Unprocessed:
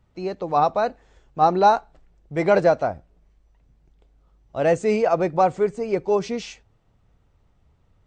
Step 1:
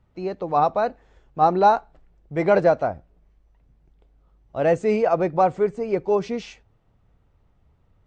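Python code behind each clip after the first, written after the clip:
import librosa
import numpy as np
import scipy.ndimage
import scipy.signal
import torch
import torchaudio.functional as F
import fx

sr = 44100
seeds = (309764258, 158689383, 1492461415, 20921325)

y = fx.high_shelf(x, sr, hz=5000.0, db=-11.0)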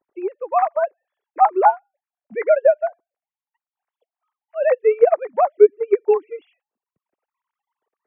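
y = fx.sine_speech(x, sr)
y = fx.transient(y, sr, attack_db=3, sustain_db=-12)
y = F.gain(torch.from_numpy(y), 1.5).numpy()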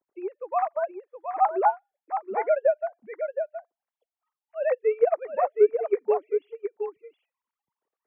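y = x + 10.0 ** (-7.5 / 20.0) * np.pad(x, (int(719 * sr / 1000.0), 0))[:len(x)]
y = F.gain(torch.from_numpy(y), -7.5).numpy()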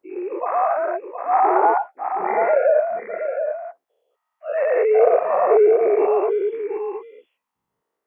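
y = fx.spec_dilate(x, sr, span_ms=240)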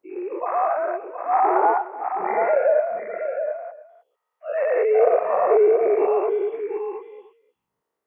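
y = x + 10.0 ** (-17.5 / 20.0) * np.pad(x, (int(304 * sr / 1000.0), 0))[:len(x)]
y = F.gain(torch.from_numpy(y), -2.0).numpy()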